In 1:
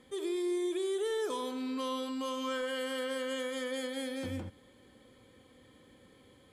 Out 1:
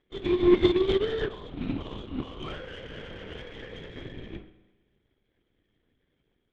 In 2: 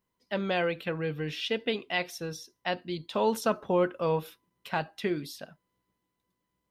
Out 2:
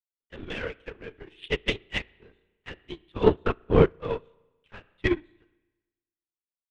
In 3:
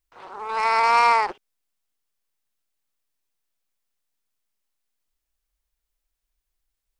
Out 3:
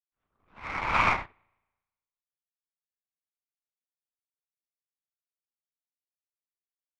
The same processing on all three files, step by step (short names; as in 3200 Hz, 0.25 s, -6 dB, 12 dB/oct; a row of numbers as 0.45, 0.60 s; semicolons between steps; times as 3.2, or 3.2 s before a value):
fixed phaser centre 300 Hz, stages 4; LPC vocoder at 8 kHz whisper; power-law curve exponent 1.4; air absorption 59 m; spring tank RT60 1.2 s, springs 35/54 ms, chirp 20 ms, DRR 11.5 dB; upward expander 2.5:1, over -43 dBFS; match loudness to -27 LUFS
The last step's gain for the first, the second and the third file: +18.5, +15.5, +5.0 dB